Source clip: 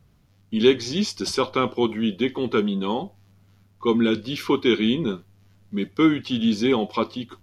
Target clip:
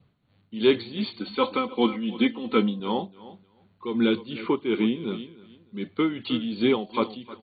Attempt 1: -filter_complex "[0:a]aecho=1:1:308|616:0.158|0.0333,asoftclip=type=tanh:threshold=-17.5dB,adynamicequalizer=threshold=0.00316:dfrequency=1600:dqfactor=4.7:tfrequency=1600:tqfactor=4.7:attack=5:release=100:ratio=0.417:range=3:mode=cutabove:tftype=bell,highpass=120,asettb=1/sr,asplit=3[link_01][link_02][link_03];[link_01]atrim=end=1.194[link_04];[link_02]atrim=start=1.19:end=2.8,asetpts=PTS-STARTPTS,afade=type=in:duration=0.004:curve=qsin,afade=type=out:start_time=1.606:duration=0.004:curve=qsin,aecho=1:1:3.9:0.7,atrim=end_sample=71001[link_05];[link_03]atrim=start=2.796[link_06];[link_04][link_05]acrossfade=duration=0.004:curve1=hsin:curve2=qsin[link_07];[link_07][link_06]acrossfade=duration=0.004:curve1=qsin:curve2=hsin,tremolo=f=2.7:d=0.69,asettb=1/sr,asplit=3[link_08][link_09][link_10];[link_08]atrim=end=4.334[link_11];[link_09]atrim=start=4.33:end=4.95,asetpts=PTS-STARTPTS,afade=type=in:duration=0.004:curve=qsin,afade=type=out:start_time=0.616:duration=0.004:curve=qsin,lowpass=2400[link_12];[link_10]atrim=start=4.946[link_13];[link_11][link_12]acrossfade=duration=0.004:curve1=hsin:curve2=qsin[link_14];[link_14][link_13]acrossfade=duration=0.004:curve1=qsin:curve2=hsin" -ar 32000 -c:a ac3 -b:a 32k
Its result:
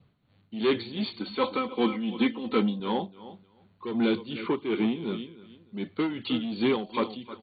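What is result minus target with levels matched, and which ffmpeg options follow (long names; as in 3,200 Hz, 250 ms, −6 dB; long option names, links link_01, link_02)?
soft clipping: distortion +15 dB
-filter_complex "[0:a]aecho=1:1:308|616:0.158|0.0333,asoftclip=type=tanh:threshold=-6dB,adynamicequalizer=threshold=0.00316:dfrequency=1600:dqfactor=4.7:tfrequency=1600:tqfactor=4.7:attack=5:release=100:ratio=0.417:range=3:mode=cutabove:tftype=bell,highpass=120,asettb=1/sr,asplit=3[link_01][link_02][link_03];[link_01]atrim=end=1.194[link_04];[link_02]atrim=start=1.19:end=2.8,asetpts=PTS-STARTPTS,afade=type=in:duration=0.004:curve=qsin,afade=type=out:start_time=1.606:duration=0.004:curve=qsin,aecho=1:1:3.9:0.7,atrim=end_sample=71001[link_05];[link_03]atrim=start=2.796[link_06];[link_04][link_05]acrossfade=duration=0.004:curve1=hsin:curve2=qsin[link_07];[link_07][link_06]acrossfade=duration=0.004:curve1=qsin:curve2=hsin,tremolo=f=2.7:d=0.69,asettb=1/sr,asplit=3[link_08][link_09][link_10];[link_08]atrim=end=4.334[link_11];[link_09]atrim=start=4.33:end=4.95,asetpts=PTS-STARTPTS,afade=type=in:duration=0.004:curve=qsin,afade=type=out:start_time=0.616:duration=0.004:curve=qsin,lowpass=2400[link_12];[link_10]atrim=start=4.946[link_13];[link_11][link_12]acrossfade=duration=0.004:curve1=hsin:curve2=qsin[link_14];[link_14][link_13]acrossfade=duration=0.004:curve1=qsin:curve2=hsin" -ar 32000 -c:a ac3 -b:a 32k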